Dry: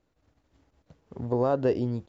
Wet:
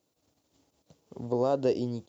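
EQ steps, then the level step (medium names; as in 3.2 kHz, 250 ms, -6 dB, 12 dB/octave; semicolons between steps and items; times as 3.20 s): high-pass 95 Hz; tilt EQ +2.5 dB/octave; peaking EQ 1.7 kHz -13 dB 1.5 oct; +3.0 dB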